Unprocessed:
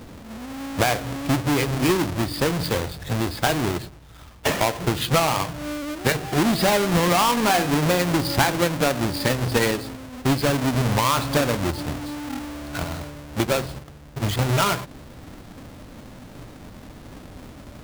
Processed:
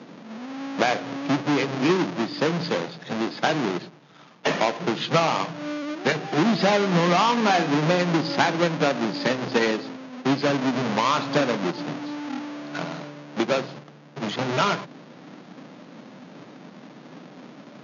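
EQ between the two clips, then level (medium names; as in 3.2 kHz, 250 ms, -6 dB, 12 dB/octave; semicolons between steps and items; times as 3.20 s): steep high-pass 150 Hz 48 dB/octave; brick-wall FIR low-pass 6.9 kHz; distance through air 78 m; 0.0 dB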